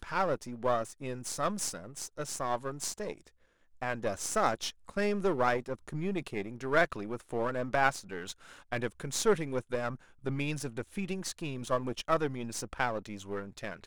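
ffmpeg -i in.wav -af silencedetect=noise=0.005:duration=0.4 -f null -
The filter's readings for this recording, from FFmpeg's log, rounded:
silence_start: 3.28
silence_end: 3.82 | silence_duration: 0.53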